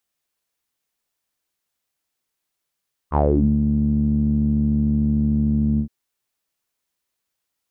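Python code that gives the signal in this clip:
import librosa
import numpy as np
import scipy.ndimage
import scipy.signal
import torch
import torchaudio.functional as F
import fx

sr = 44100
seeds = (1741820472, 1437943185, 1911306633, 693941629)

y = fx.sub_voice(sr, note=38, wave='saw', cutoff_hz=210.0, q=6.9, env_oct=2.5, env_s=0.33, attack_ms=47.0, decay_s=0.43, sustain_db=-5.5, release_s=0.09, note_s=2.68, slope=12)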